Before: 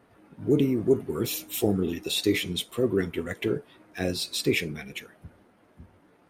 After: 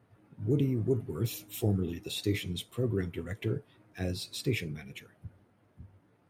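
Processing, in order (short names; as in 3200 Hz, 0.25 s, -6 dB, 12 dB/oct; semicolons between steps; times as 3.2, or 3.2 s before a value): bell 110 Hz +14.5 dB 0.94 oct; gain -9 dB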